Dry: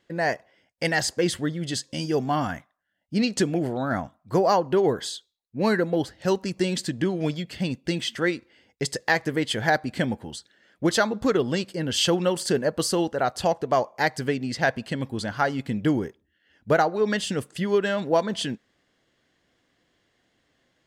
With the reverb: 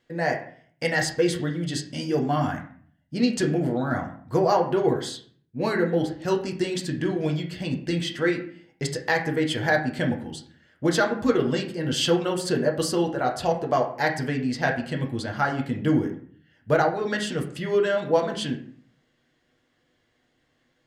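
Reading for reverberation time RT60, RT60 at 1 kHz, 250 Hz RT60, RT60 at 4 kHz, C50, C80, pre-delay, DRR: 0.50 s, 0.50 s, 0.65 s, 0.40 s, 9.5 dB, 13.0 dB, 6 ms, 1.0 dB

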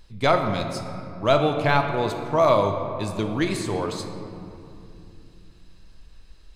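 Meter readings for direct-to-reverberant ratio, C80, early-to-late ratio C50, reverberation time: 4.5 dB, 7.0 dB, 6.0 dB, 2.7 s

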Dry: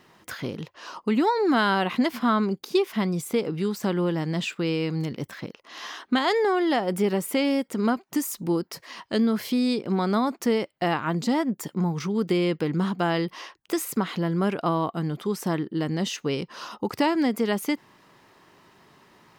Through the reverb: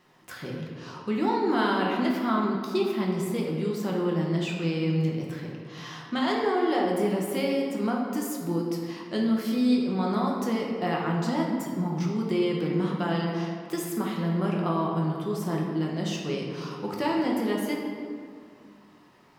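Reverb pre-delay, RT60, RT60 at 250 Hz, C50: 5 ms, 2.1 s, 2.6 s, 1.5 dB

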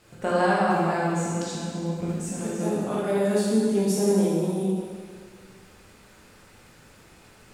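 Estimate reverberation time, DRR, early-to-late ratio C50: 1.9 s, −7.5 dB, −2.0 dB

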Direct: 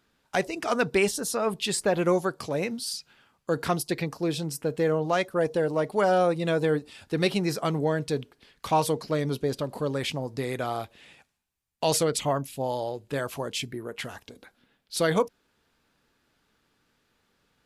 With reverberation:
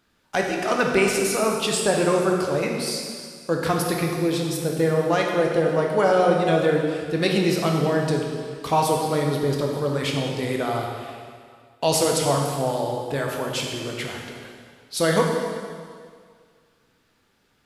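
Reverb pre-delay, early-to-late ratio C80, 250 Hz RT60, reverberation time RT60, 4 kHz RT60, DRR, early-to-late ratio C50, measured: 6 ms, 3.5 dB, 1.9 s, 2.0 s, 1.9 s, 0.0 dB, 2.0 dB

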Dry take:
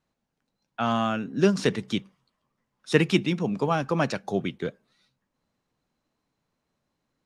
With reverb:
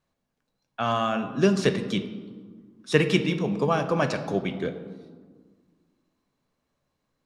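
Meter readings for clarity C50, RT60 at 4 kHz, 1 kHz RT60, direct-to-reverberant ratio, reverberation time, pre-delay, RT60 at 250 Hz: 10.5 dB, 0.90 s, 1.6 s, 8.0 dB, 1.6 s, 3 ms, 2.3 s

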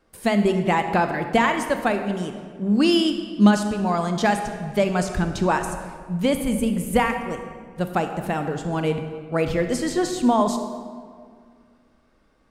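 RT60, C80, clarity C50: 2.0 s, 8.5 dB, 7.5 dB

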